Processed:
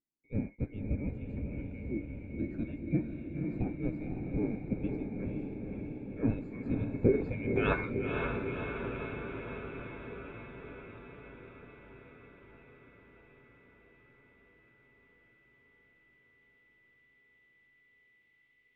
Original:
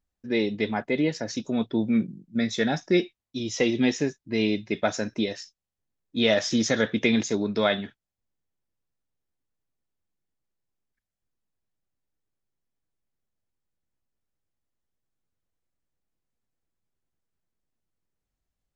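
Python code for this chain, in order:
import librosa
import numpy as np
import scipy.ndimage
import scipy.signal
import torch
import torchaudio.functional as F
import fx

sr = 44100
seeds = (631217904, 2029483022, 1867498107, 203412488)

y = fx.band_swap(x, sr, width_hz=2000)
y = fx.filter_sweep_lowpass(y, sr, from_hz=290.0, to_hz=3100.0, start_s=6.96, end_s=8.46, q=3.6)
y = fx.echo_diffused(y, sr, ms=522, feedback_pct=72, wet_db=-3.5)
y = y * 10.0 ** (1.0 / 20.0)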